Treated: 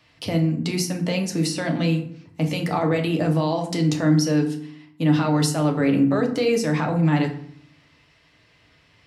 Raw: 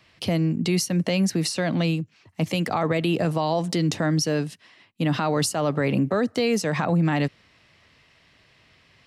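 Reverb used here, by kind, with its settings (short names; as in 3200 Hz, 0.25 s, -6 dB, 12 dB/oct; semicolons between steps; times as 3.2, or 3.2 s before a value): FDN reverb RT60 0.61 s, low-frequency decay 1.5×, high-frequency decay 0.6×, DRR 2 dB; gain -2 dB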